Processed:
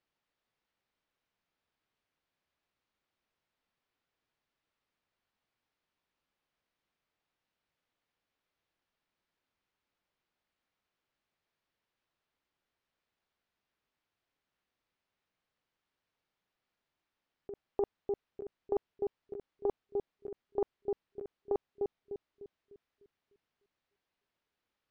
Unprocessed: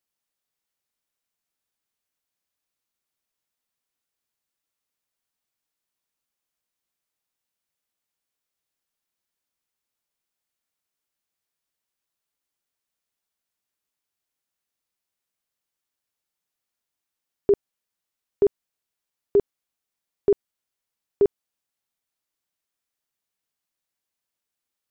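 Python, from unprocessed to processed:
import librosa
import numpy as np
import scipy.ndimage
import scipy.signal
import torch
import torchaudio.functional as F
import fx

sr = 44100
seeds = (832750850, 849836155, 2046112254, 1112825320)

p1 = fx.air_absorb(x, sr, metres=230.0)
p2 = p1 + fx.echo_filtered(p1, sr, ms=300, feedback_pct=45, hz=900.0, wet_db=-12.5, dry=0)
p3 = fx.over_compress(p2, sr, threshold_db=-32.0, ratio=-1.0)
p4 = fx.doppler_dist(p3, sr, depth_ms=0.39)
y = p4 * 10.0 ** (-2.5 / 20.0)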